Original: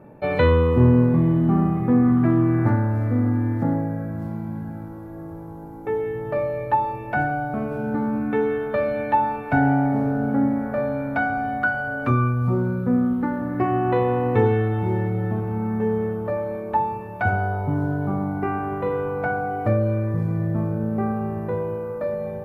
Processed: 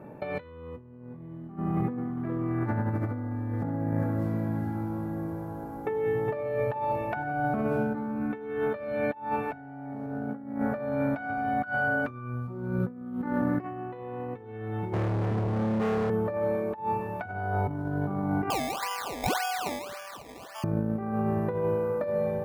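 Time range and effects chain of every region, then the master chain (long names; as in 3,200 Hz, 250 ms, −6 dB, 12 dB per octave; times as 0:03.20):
0:01.57–0:07.23: downward compressor 3 to 1, threshold −22 dBFS + single-tap delay 412 ms −6.5 dB
0:14.93–0:16.10: Chebyshev low-pass with heavy ripple 2,500 Hz, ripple 3 dB + spectral tilt −2.5 dB per octave + gain into a clipping stage and back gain 26 dB
0:18.50–0:20.64: Butterworth high-pass 780 Hz + sample-and-hold swept by an LFO 21× 1.8 Hz
whole clip: high-pass filter 89 Hz 6 dB per octave; compressor whose output falls as the input rises −27 dBFS, ratio −0.5; level −2.5 dB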